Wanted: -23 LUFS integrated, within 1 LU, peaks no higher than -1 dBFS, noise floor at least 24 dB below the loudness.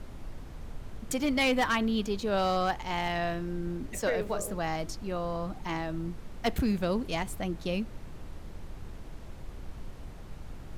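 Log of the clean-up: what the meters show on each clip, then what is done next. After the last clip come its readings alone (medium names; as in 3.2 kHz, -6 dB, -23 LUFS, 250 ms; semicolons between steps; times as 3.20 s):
clipped samples 0.3%; clipping level -20.5 dBFS; noise floor -44 dBFS; noise floor target -55 dBFS; loudness -31.0 LUFS; peak level -20.5 dBFS; loudness target -23.0 LUFS
-> clip repair -20.5 dBFS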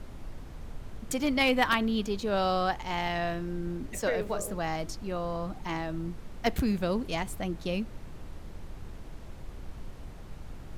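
clipped samples 0.0%; noise floor -44 dBFS; noise floor target -55 dBFS
-> noise print and reduce 11 dB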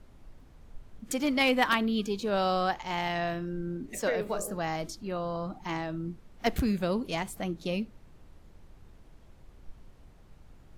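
noise floor -55 dBFS; loudness -31.0 LUFS; peak level -11.5 dBFS; loudness target -23.0 LUFS
-> trim +8 dB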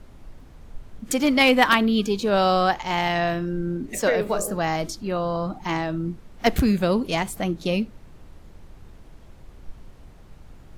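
loudness -23.0 LUFS; peak level -3.5 dBFS; noise floor -47 dBFS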